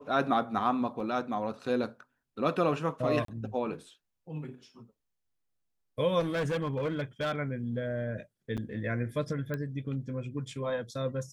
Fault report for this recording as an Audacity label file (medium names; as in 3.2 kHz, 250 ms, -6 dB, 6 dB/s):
1.000000	1.000000	dropout 2.9 ms
3.250000	3.280000	dropout 33 ms
6.190000	7.360000	clipped -27 dBFS
8.570000	8.580000	dropout 7.4 ms
9.540000	9.540000	pop -22 dBFS